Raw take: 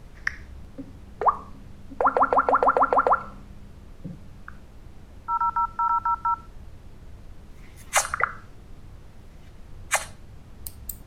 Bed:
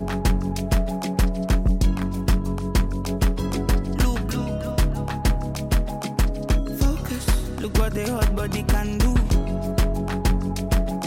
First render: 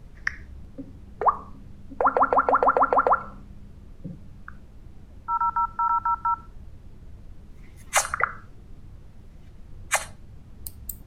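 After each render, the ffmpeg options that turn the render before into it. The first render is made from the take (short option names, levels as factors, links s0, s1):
-af "afftdn=nr=6:nf=-47"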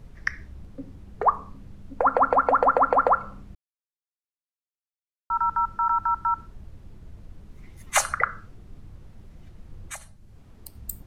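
-filter_complex "[0:a]asettb=1/sr,asplit=3[s0][s1][s2];[s0]atrim=end=9.924[s3];[s1]atrim=start=9.92:end=10.75,asetpts=PTS-STARTPTS,afade=t=in:d=0.004:c=qsin,afade=t=out:st=0.826:d=0.004:c=qsin,acrossover=split=96|260|1300|5100[s4][s5][s6][s7][s8];[s4]acompressor=threshold=0.00398:ratio=3[s9];[s5]acompressor=threshold=0.00126:ratio=3[s10];[s6]acompressor=threshold=0.00282:ratio=3[s11];[s7]acompressor=threshold=0.00282:ratio=3[s12];[s8]acompressor=threshold=0.00708:ratio=3[s13];[s9][s10][s11][s12][s13]amix=inputs=5:normalize=0[s14];[s2]atrim=start=10.746[s15];[s3][s14]acrossfade=d=0.004:c1=hsin:c2=qsin[s16];[s16][s15]acrossfade=d=0.004:c1=qsin:c2=hsin,asplit=3[s17][s18][s19];[s17]atrim=end=3.55,asetpts=PTS-STARTPTS,afade=t=out:st=3.546:d=0.004:c=hsin[s20];[s18]atrim=start=3.55:end=5.3,asetpts=PTS-STARTPTS,volume=0[s21];[s19]atrim=start=5.3,asetpts=PTS-STARTPTS,afade=t=in:d=0.004:c=hsin[s22];[s20][s21][s22]concat=n=3:v=0:a=1"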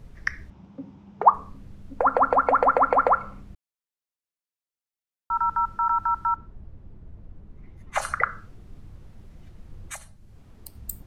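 -filter_complex "[0:a]asettb=1/sr,asplit=3[s0][s1][s2];[s0]atrim=end=0.504[s3];[s1]atrim=start=0.5:end=1.34,asetpts=PTS-STARTPTS,afade=t=in:d=0.004:c=qsin,afade=t=out:st=0.836:d=0.004:c=qsin,highpass=140,equalizer=f=190:t=q:w=4:g=7,equalizer=f=470:t=q:w=4:g=-4,equalizer=f=900:t=q:w=4:g=9,equalizer=f=1800:t=q:w=4:g=-5,equalizer=f=4300:t=q:w=4:g=-7,lowpass=f=5700:w=0.5412,lowpass=f=5700:w=1.3066[s4];[s2]atrim=start=1.336[s5];[s3][s4]acrossfade=d=0.004:c1=hsin:c2=qsin[s6];[s6][s5]acrossfade=d=0.004:c1=qsin:c2=hsin,asettb=1/sr,asplit=3[s7][s8][s9];[s7]atrim=end=2.474[s10];[s8]atrim=start=2.47:end=3.41,asetpts=PTS-STARTPTS,afade=t=in:d=0.004:c=qsin,afade=t=out:st=0.936:d=0.004:c=qsin,equalizer=f=2200:w=4.7:g=8[s11];[s9]atrim=start=3.406[s12];[s10][s11]acrossfade=d=0.004:c1=hsin:c2=qsin[s13];[s13][s12]acrossfade=d=0.004:c1=qsin:c2=hsin,asplit=3[s14][s15][s16];[s14]afade=t=out:st=6.34:d=0.02[s17];[s15]lowpass=f=1000:p=1,afade=t=in:st=6.34:d=0.02,afade=t=out:st=8.01:d=0.02[s18];[s16]afade=t=in:st=8.01:d=0.02[s19];[s17][s18][s19]amix=inputs=3:normalize=0"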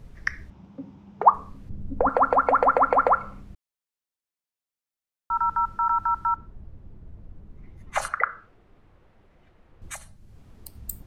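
-filter_complex "[0:a]asettb=1/sr,asplit=3[s0][s1][s2];[s0]atrim=end=1.694[s3];[s1]atrim=start=1.69:end=2.09,asetpts=PTS-STARTPTS,afade=t=in:d=0.004:c=qsin,afade=t=out:st=0.396:d=0.004:c=qsin,tiltshelf=f=700:g=9.5[s4];[s2]atrim=start=2.086[s5];[s3][s4]acrossfade=d=0.004:c1=hsin:c2=qsin[s6];[s6][s5]acrossfade=d=0.004:c1=qsin:c2=hsin,asettb=1/sr,asplit=3[s7][s8][s9];[s7]atrim=end=8.084[s10];[s8]atrim=start=8.08:end=9.82,asetpts=PTS-STARTPTS,afade=t=in:d=0.004:c=qsin,afade=t=out:st=1.736:d=0.004:c=qsin,acrossover=split=350 3200:gain=0.2 1 0.178[s11][s12][s13];[s11][s12][s13]amix=inputs=3:normalize=0[s14];[s9]atrim=start=9.816[s15];[s10][s14]acrossfade=d=0.004:c1=hsin:c2=qsin[s16];[s16][s15]acrossfade=d=0.004:c1=qsin:c2=hsin"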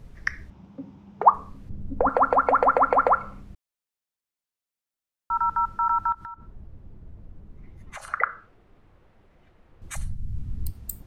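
-filter_complex "[0:a]asettb=1/sr,asplit=3[s0][s1][s2];[s0]atrim=end=6.124[s3];[s1]atrim=start=6.12:end=8.08,asetpts=PTS-STARTPTS,afade=t=in:d=0.004:c=qsin,afade=t=out:st=1.956:d=0.004:c=qsin,acompressor=threshold=0.0178:ratio=10:attack=3.2:release=140:knee=1:detection=peak[s4];[s2]atrim=start=8.076[s5];[s3][s4]acrossfade=d=0.004:c1=hsin:c2=qsin[s6];[s6][s5]acrossfade=d=0.004:c1=qsin:c2=hsin,asplit=3[s7][s8][s9];[s7]afade=t=out:st=9.95:d=0.02[s10];[s8]asubboost=boost=11:cutoff=170,afade=t=in:st=9.95:d=0.02,afade=t=out:st=10.71:d=0.02[s11];[s9]afade=t=in:st=10.71:d=0.02[s12];[s10][s11][s12]amix=inputs=3:normalize=0"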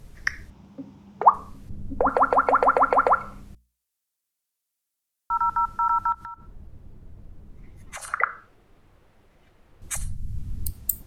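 -af "equalizer=f=12000:t=o:w=2.1:g=10.5,bandreject=f=60:t=h:w=6,bandreject=f=120:t=h:w=6,bandreject=f=180:t=h:w=6,bandreject=f=240:t=h:w=6"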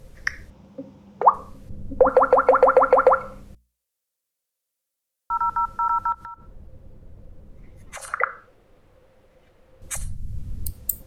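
-af "equalizer=f=520:t=o:w=0.22:g=13.5"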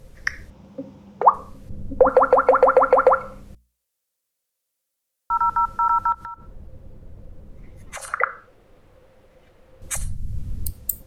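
-af "dynaudnorm=f=180:g=3:m=1.41"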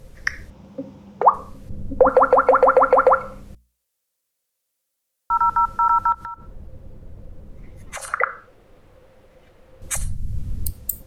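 -af "volume=1.26,alimiter=limit=0.708:level=0:latency=1"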